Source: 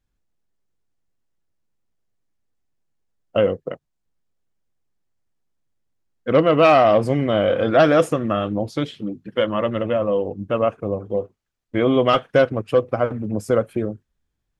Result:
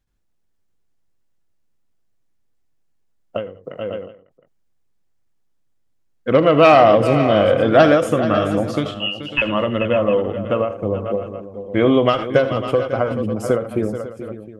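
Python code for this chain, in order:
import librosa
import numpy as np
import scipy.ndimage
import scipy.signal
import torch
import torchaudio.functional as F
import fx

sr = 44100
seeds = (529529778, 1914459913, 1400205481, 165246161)

y = fx.freq_invert(x, sr, carrier_hz=3100, at=(8.94, 9.42))
y = fx.echo_multitap(y, sr, ms=(42, 72, 81, 431, 548, 712), db=(-19.5, -19.5, -17.0, -12.5, -14.5, -19.0))
y = fx.end_taper(y, sr, db_per_s=110.0)
y = y * 10.0 ** (3.0 / 20.0)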